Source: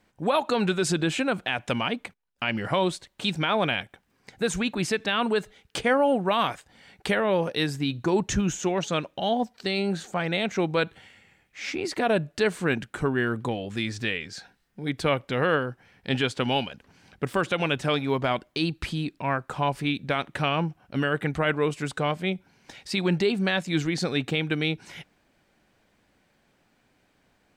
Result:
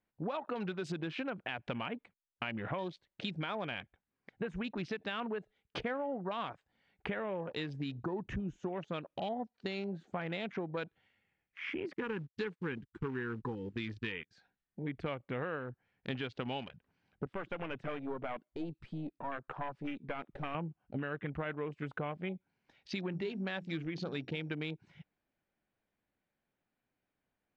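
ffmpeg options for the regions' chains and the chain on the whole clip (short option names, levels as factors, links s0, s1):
-filter_complex "[0:a]asettb=1/sr,asplit=3[s0][s1][s2];[s0]atrim=end=11.934[s3];[s1]atrim=start=11.93:end=14.31,asetpts=PTS-STARTPTS,afade=t=in:d=0.004:c=qsin,afade=t=out:st=2.376:d=0.004:c=qsin,agate=range=0.0447:threshold=0.0158:ratio=16:release=100:detection=peak,acrusher=bits=3:mode=log:mix=0:aa=0.000001,asuperstop=centerf=640:order=8:qfactor=2.2[s4];[s2]atrim=start=14.306[s5];[s3][s4]acrossfade=d=0.004:c1=hsin:c2=qsin[s6];[s6][s5]acrossfade=d=0.004:c1=qsin:c2=hsin,asettb=1/sr,asplit=3[s7][s8][s9];[s7]atrim=end=17.264[s10];[s8]atrim=start=17.26:end=20.55,asetpts=PTS-STARTPTS,afade=t=in:d=0.004:c=qsin,afade=t=out:st=3.286:d=0.004:c=qsin,highpass=160,aeval=exprs='(tanh(14.1*val(0)+0.65)-tanh(0.65))/14.1':c=same[s11];[s9]atrim=start=20.546[s12];[s10][s11]acrossfade=d=0.004:c1=hsin:c2=qsin[s13];[s13][s12]acrossfade=d=0.004:c1=qsin:c2=hsin,asettb=1/sr,asplit=3[s14][s15][s16];[s14]atrim=end=23.094[s17];[s15]atrim=start=23.09:end=24.54,asetpts=PTS-STARTPTS,afade=t=in:d=0.004:c=qsin,afade=t=out:st=1.446:d=0.004:c=qsin,bandreject=f=60:t=h:w=6,bandreject=f=120:t=h:w=6,bandreject=f=180:t=h:w=6,bandreject=f=240:t=h:w=6,bandreject=f=300:t=h:w=6,bandreject=f=360:t=h:w=6,aeval=exprs='val(0)+0.00178*sin(2*PI*5600*n/s)':c=same[s18];[s16]atrim=start=24.536[s19];[s17][s18]acrossfade=d=0.004:c1=hsin:c2=qsin[s20];[s20][s19]acrossfade=d=0.004:c1=qsin:c2=hsin,afwtdn=0.0158,lowpass=3500,acompressor=threshold=0.0282:ratio=6,volume=0.631"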